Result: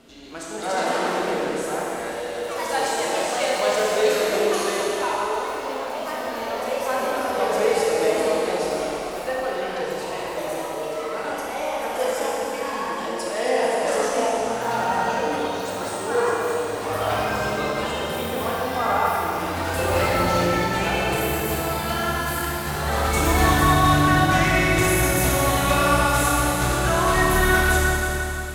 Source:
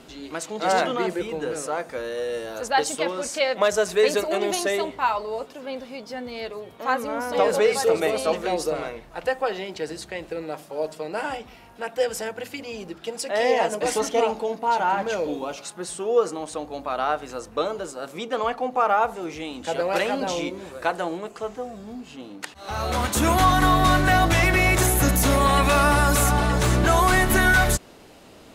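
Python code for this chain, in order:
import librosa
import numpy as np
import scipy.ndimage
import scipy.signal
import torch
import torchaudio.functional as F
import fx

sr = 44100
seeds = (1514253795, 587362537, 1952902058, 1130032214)

y = fx.rev_schroeder(x, sr, rt60_s=3.5, comb_ms=27, drr_db=-5.0)
y = fx.echo_pitch(y, sr, ms=287, semitones=3, count=3, db_per_echo=-6.0)
y = F.gain(torch.from_numpy(y), -6.0).numpy()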